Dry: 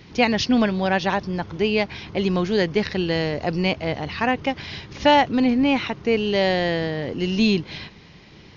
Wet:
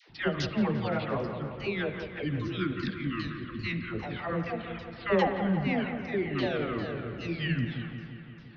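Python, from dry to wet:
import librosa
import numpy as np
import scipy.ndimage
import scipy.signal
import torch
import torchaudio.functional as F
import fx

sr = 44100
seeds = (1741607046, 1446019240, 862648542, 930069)

y = fx.pitch_ramps(x, sr, semitones=-9.0, every_ms=399)
y = fx.spec_box(y, sr, start_s=2.24, length_s=1.64, low_hz=380.0, high_hz=1000.0, gain_db=-24)
y = fx.dispersion(y, sr, late='lows', ms=93.0, hz=600.0)
y = fx.dereverb_blind(y, sr, rt60_s=1.1)
y = fx.echo_wet_lowpass(y, sr, ms=173, feedback_pct=67, hz=2500.0, wet_db=-9)
y = fx.rev_spring(y, sr, rt60_s=1.6, pass_ms=(41, 52), chirp_ms=35, drr_db=9.5)
y = y * 10.0 ** (-8.0 / 20.0)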